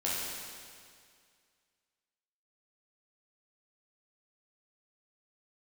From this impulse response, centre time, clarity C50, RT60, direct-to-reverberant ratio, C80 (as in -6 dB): 0.134 s, -2.5 dB, 2.1 s, -7.5 dB, 0.0 dB